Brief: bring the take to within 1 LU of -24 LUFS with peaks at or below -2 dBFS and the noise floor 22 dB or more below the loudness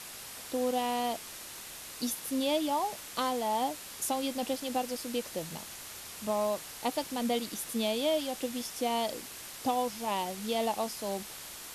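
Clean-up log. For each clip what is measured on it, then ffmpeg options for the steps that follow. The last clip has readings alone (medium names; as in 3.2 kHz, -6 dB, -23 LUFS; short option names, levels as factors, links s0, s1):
noise floor -45 dBFS; noise floor target -56 dBFS; loudness -33.5 LUFS; peak level -16.5 dBFS; loudness target -24.0 LUFS
-> -af "afftdn=nr=11:nf=-45"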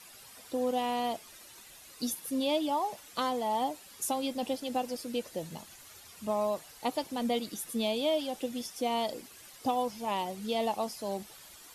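noise floor -53 dBFS; noise floor target -56 dBFS
-> -af "afftdn=nr=6:nf=-53"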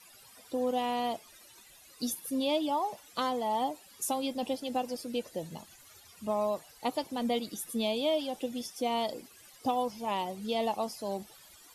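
noise floor -57 dBFS; loudness -33.5 LUFS; peak level -17.0 dBFS; loudness target -24.0 LUFS
-> -af "volume=2.99"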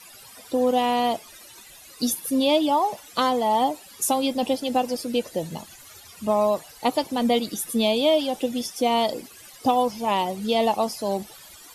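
loudness -24.0 LUFS; peak level -7.5 dBFS; noise floor -47 dBFS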